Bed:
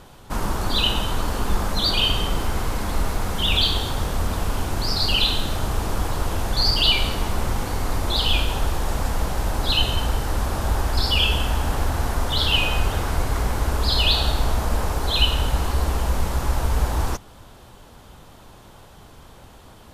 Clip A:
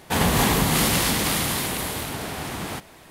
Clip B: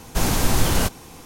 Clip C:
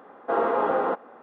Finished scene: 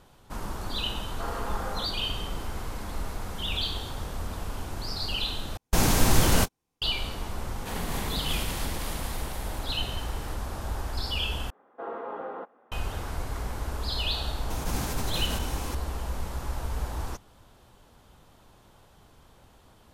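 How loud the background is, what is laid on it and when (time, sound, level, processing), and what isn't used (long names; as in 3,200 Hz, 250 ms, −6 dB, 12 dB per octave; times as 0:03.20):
bed −10.5 dB
0:00.91: mix in C −14 dB + tilt shelving filter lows −9 dB, about 680 Hz
0:05.57: overwrite with B −1.5 dB + noise gate −29 dBFS, range −38 dB
0:07.55: mix in A −14.5 dB
0:11.50: overwrite with C −13 dB
0:14.50: mix in B −16.5 dB + envelope flattener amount 70%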